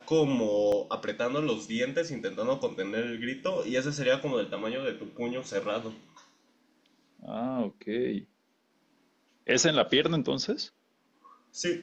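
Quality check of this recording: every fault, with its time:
0.72 gap 3.4 ms

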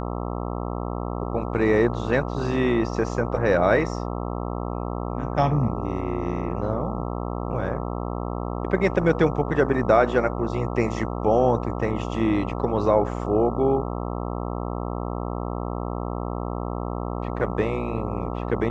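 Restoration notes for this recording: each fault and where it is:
buzz 60 Hz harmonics 22 -29 dBFS

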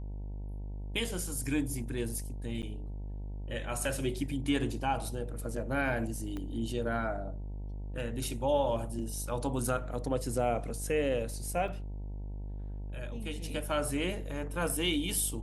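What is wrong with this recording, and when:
buzz 50 Hz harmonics 19 -39 dBFS
2.62–2.63 gap 8.7 ms
6.37 pop -26 dBFS
11.68 gap 3.1 ms

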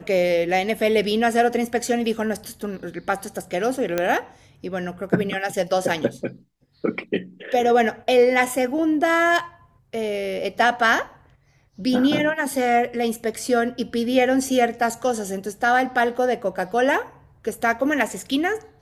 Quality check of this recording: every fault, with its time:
3.98 pop -8 dBFS

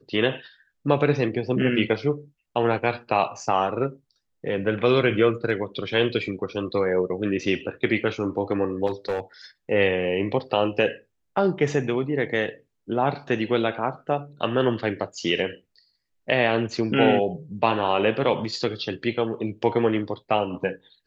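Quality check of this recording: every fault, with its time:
8.86–9.2 clipped -21 dBFS

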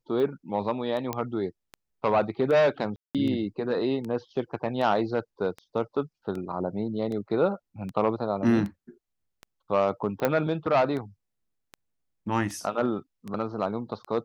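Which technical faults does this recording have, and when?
tick 78 rpm -24 dBFS
1.13 pop -14 dBFS
2.96–3.15 gap 0.187 s
10.25 pop -11 dBFS

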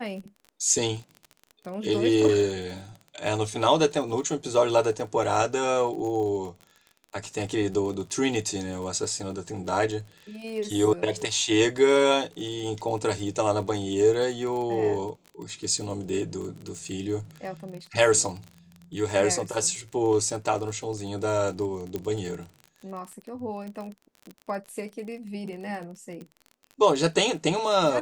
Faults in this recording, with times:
crackle 31/s -34 dBFS
21.96 pop -17 dBFS

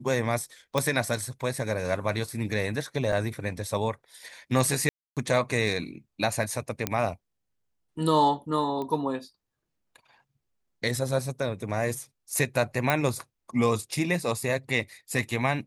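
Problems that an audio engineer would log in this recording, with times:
0.78 pop
3.12–3.13 gap 5.2 ms
4.89–5.17 gap 0.277 s
6.87 pop -9 dBFS
8.82 pop -22 dBFS
12.9 pop -9 dBFS

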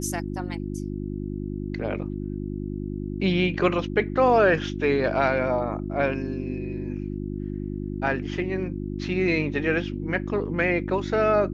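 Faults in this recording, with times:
hum 50 Hz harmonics 7 -31 dBFS

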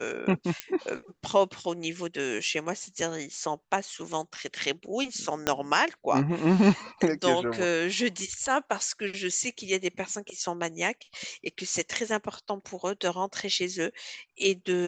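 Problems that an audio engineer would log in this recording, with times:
0.6 pop -13 dBFS
5.47 pop -8 dBFS

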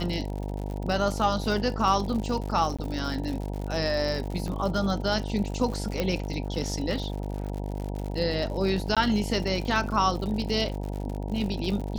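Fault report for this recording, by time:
buzz 50 Hz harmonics 19 -32 dBFS
crackle 99/s -33 dBFS
2.77–2.79 gap 16 ms
4.48 pop -23 dBFS
6 pop -13 dBFS
8.95–8.97 gap 16 ms

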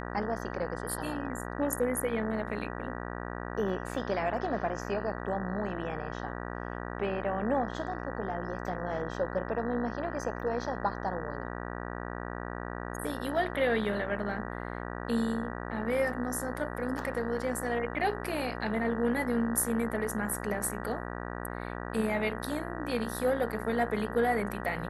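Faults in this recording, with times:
buzz 60 Hz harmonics 32 -38 dBFS

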